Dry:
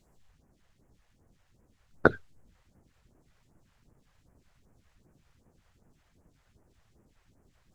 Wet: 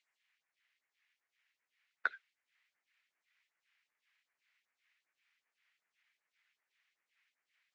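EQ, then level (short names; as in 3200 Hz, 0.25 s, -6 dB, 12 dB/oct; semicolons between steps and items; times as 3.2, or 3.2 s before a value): ladder band-pass 2500 Hz, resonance 50%; +6.0 dB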